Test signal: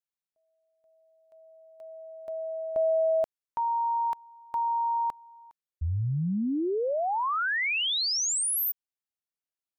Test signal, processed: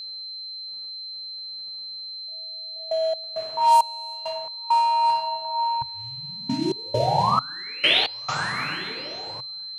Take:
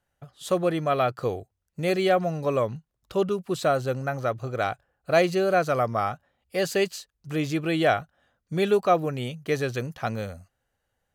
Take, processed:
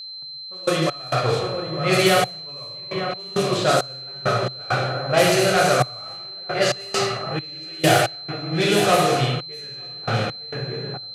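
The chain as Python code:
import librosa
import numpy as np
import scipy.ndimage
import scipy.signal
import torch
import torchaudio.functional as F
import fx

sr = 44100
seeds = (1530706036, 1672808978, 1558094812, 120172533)

p1 = fx.delta_mod(x, sr, bps=64000, step_db=-38.0)
p2 = fx.gate_hold(p1, sr, open_db=-40.0, close_db=-42.0, hold_ms=71.0, range_db=-31, attack_ms=0.41, release_ms=291.0)
p3 = p2 + fx.echo_swing(p2, sr, ms=1208, ratio=3, feedback_pct=34, wet_db=-9.0, dry=0)
p4 = fx.dmg_crackle(p3, sr, seeds[0], per_s=62.0, level_db=-37.0)
p5 = fx.rev_plate(p4, sr, seeds[1], rt60_s=1.3, hf_ratio=1.0, predelay_ms=0, drr_db=-4.0)
p6 = fx.env_lowpass(p5, sr, base_hz=670.0, full_db=-12.0)
p7 = fx.step_gate(p6, sr, bpm=67, pattern='x..x.xxxxx...x.x', floor_db=-24.0, edge_ms=4.5)
p8 = fx.tilt_eq(p7, sr, slope=3.5)
p9 = p8 + 10.0 ** (-35.0 / 20.0) * np.sin(2.0 * np.pi * 4100.0 * np.arange(len(p8)) / sr)
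p10 = fx.peak_eq(p9, sr, hz=130.0, db=14.0, octaves=0.67)
y = F.gain(torch.from_numpy(p10), 2.0).numpy()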